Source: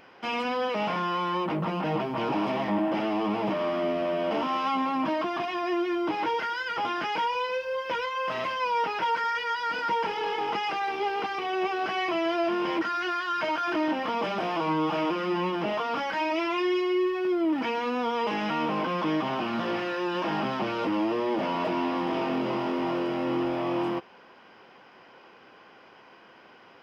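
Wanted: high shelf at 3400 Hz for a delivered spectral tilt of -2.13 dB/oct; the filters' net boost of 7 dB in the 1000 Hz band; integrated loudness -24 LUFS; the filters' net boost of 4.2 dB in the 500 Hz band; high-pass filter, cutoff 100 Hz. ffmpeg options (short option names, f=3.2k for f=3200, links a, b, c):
-af "highpass=100,equalizer=f=500:t=o:g=3.5,equalizer=f=1k:t=o:g=6.5,highshelf=f=3.4k:g=9,volume=-1dB"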